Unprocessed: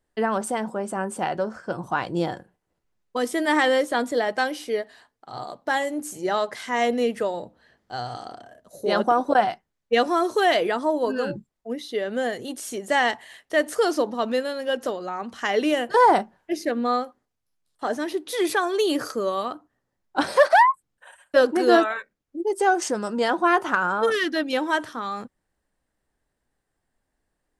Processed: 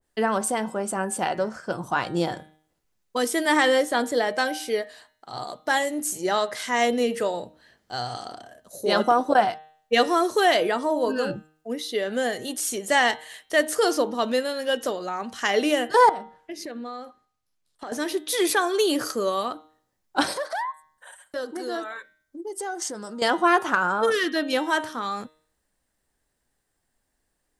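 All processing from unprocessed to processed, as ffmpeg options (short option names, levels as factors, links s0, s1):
-filter_complex "[0:a]asettb=1/sr,asplit=3[s0][s1][s2];[s0]atrim=end=16.094[s3];[s1]atrim=start=16.09:end=17.92,asetpts=PTS-STARTPTS,afade=t=in:d=0.004:c=qsin,afade=t=out:st=1.826:d=0.004:c=qsin,acompressor=threshold=0.0251:ratio=8:attack=3.2:release=140:knee=1:detection=peak,highshelf=f=7000:g=-10[s4];[s2]atrim=start=17.916[s5];[s3][s4]acrossfade=d=0.004:c1=hsin:c2=qsin[s6];[s6][s5]acrossfade=d=0.004:c1=qsin:c2=hsin,asettb=1/sr,asplit=3[s7][s8][s9];[s7]atrim=end=20.334[s10];[s8]atrim=start=20.33:end=23.22,asetpts=PTS-STARTPTS,afade=t=in:d=0.004:c=qsin,afade=t=out:st=2.886:d=0.004:c=qsin,equalizer=f=2600:w=5.5:g=-10.5,acompressor=threshold=0.0112:ratio=2:attack=3.2:release=140:knee=1:detection=peak[s11];[s9]atrim=start=23.216[s12];[s10][s11]acrossfade=d=0.004:c1=hsin:c2=qsin[s13];[s13][s12]acrossfade=d=0.004:c1=qsin:c2=hsin,highshelf=f=3200:g=9,bandreject=f=155.2:t=h:w=4,bandreject=f=310.4:t=h:w=4,bandreject=f=465.6:t=h:w=4,bandreject=f=620.8:t=h:w=4,bandreject=f=776:t=h:w=4,bandreject=f=931.2:t=h:w=4,bandreject=f=1086.4:t=h:w=4,bandreject=f=1241.6:t=h:w=4,bandreject=f=1396.8:t=h:w=4,bandreject=f=1552:t=h:w=4,bandreject=f=1707.2:t=h:w=4,bandreject=f=1862.4:t=h:w=4,bandreject=f=2017.6:t=h:w=4,bandreject=f=2172.8:t=h:w=4,bandreject=f=2328:t=h:w=4,bandreject=f=2483.2:t=h:w=4,bandreject=f=2638.4:t=h:w=4,bandreject=f=2793.6:t=h:w=4,bandreject=f=2948.8:t=h:w=4,bandreject=f=3104:t=h:w=4,bandreject=f=3259.2:t=h:w=4,bandreject=f=3414.4:t=h:w=4,bandreject=f=3569.6:t=h:w=4,bandreject=f=3724.8:t=h:w=4,bandreject=f=3880:t=h:w=4,bandreject=f=4035.2:t=h:w=4,bandreject=f=4190.4:t=h:w=4,adynamicequalizer=threshold=0.0282:dfrequency=1700:dqfactor=0.7:tfrequency=1700:tqfactor=0.7:attack=5:release=100:ratio=0.375:range=2.5:mode=cutabove:tftype=highshelf"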